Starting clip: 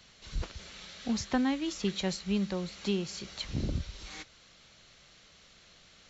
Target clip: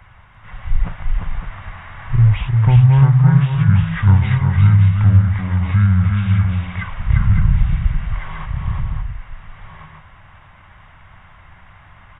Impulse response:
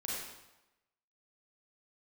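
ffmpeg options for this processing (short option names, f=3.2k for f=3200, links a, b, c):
-filter_complex "[0:a]asplit=2[a][b];[b]alimiter=level_in=1dB:limit=-24dB:level=0:latency=1,volume=-1dB,volume=-3dB[c];[a][c]amix=inputs=2:normalize=0,lowshelf=f=460:t=q:w=1.5:g=11.5,aecho=1:1:174|281|702|772:0.668|0.422|0.355|0.282,asetrate=22050,aresample=44100,equalizer=f=250:t=o:w=1:g=-9,equalizer=f=1k:t=o:w=1:g=7,equalizer=f=4k:t=o:w=1:g=-9,volume=2.5dB"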